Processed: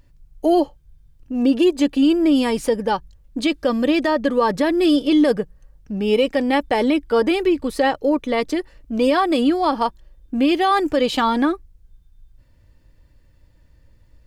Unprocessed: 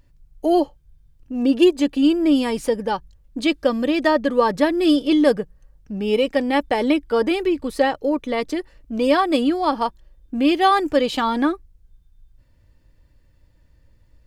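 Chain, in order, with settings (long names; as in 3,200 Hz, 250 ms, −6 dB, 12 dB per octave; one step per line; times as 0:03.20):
brickwall limiter −11 dBFS, peak gain reduction 7 dB
level +2.5 dB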